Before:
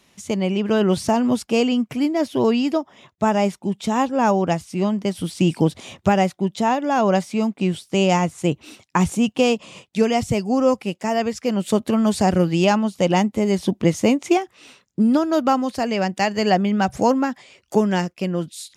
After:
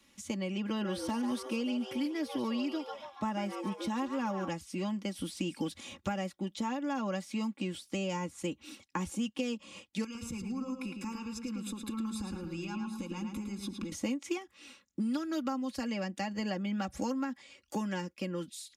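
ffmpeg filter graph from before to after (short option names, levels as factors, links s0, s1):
-filter_complex "[0:a]asettb=1/sr,asplit=3[s0][s1][s2];[s0]atrim=end=0.684[s3];[s1]atrim=start=0.68:end=4.49,asetpts=PTS-STARTPTS,afade=t=in:d=0.004:c=qsin,afade=t=out:st=3.806:d=0.004:c=qsin,equalizer=f=7100:w=7.9:g=-12,asplit=6[s4][s5][s6][s7][s8][s9];[s5]adelay=142,afreqshift=140,volume=0.316[s10];[s6]adelay=284,afreqshift=280,volume=0.143[s11];[s7]adelay=426,afreqshift=420,volume=0.0638[s12];[s8]adelay=568,afreqshift=560,volume=0.0288[s13];[s9]adelay=710,afreqshift=700,volume=0.013[s14];[s4][s10][s11][s12][s13][s14]amix=inputs=6:normalize=0,atrim=end_sample=168021[s15];[s2]atrim=start=4.486[s16];[s3][s15]acrossfade=d=0.004:c1=hsin:c2=qsin[s17];[s17][s16]acrossfade=d=0.004:c1=qsin:c2=hsin,asettb=1/sr,asplit=3[s18][s19][s20];[s18]atrim=end=10.044[s21];[s19]atrim=start=10.04:end=13.92,asetpts=PTS-STARTPTS,afade=t=in:d=0.004:c=qsin,afade=t=out:st=3.876:d=0.004:c=qsin,acompressor=threshold=0.0282:ratio=6:attack=3.2:release=140:knee=1:detection=peak,aecho=1:1:0.8:0.89,atrim=end_sample=171108,asplit=2[s22][s23];[s23]adelay=108,lowpass=f=4000:p=1,volume=0.562,asplit=2[s24][s25];[s25]adelay=108,lowpass=f=4000:p=1,volume=0.39,asplit=2[s26][s27];[s27]adelay=108,lowpass=f=4000:p=1,volume=0.39,asplit=2[s28][s29];[s29]adelay=108,lowpass=f=4000:p=1,volume=0.39,asplit=2[s30][s31];[s31]adelay=108,lowpass=f=4000:p=1,volume=0.39[s32];[s22][s24][s26][s28][s30][s32]amix=inputs=6:normalize=0,atrim=end_sample=171108[s33];[s20]atrim=start=13.916[s34];[s21][s33]acrossfade=d=0.004:c1=hsin:c2=qsin[s35];[s35][s34]acrossfade=d=0.004:c1=qsin:c2=hsin,equalizer=f=680:w=2.6:g=-7.5,aecho=1:1:3.6:0.76,acrossover=split=240|1100[s36][s37][s38];[s36]acompressor=threshold=0.0282:ratio=4[s39];[s37]acompressor=threshold=0.0355:ratio=4[s40];[s38]acompressor=threshold=0.02:ratio=4[s41];[s39][s40][s41]amix=inputs=3:normalize=0,volume=0.376"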